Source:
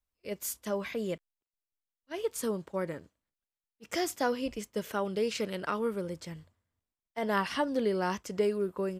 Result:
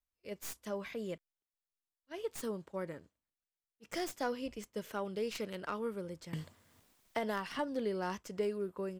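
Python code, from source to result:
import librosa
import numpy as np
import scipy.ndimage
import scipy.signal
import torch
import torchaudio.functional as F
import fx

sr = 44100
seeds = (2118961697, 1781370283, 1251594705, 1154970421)

y = fx.tracing_dist(x, sr, depth_ms=0.065)
y = fx.band_squash(y, sr, depth_pct=100, at=(6.33, 7.59))
y = y * librosa.db_to_amplitude(-6.5)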